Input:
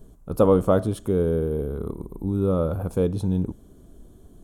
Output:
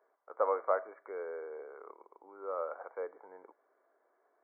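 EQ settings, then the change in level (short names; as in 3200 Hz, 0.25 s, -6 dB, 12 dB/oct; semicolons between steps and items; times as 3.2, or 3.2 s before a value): Bessel high-pass 890 Hz, order 6; brick-wall FIR low-pass 2300 Hz; -2.5 dB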